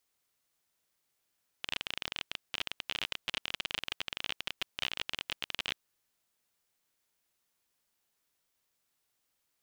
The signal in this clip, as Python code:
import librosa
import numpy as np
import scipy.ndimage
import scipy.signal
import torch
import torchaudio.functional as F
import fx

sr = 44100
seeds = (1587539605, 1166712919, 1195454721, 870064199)

y = fx.geiger_clicks(sr, seeds[0], length_s=4.14, per_s=30.0, level_db=-16.5)